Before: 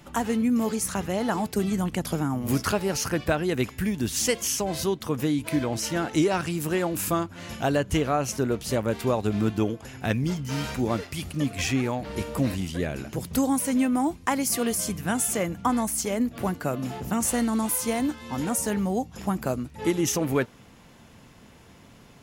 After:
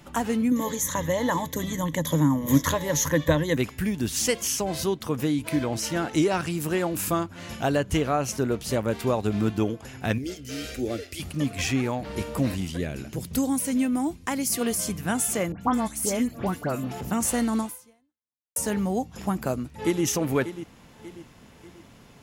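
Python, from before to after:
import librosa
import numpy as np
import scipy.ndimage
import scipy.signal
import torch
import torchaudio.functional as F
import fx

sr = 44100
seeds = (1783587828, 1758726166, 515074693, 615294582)

y = fx.ripple_eq(x, sr, per_octave=1.1, db=16, at=(0.51, 3.57))
y = fx.fixed_phaser(y, sr, hz=400.0, stages=4, at=(10.18, 11.2))
y = fx.peak_eq(y, sr, hz=940.0, db=-6.0, octaves=1.9, at=(12.77, 14.61))
y = fx.dispersion(y, sr, late='highs', ms=94.0, hz=2200.0, at=(15.52, 17.01))
y = fx.echo_throw(y, sr, start_s=19.64, length_s=0.4, ms=590, feedback_pct=45, wet_db=-11.5)
y = fx.edit(y, sr, fx.fade_out_span(start_s=17.6, length_s=0.96, curve='exp'), tone=tone)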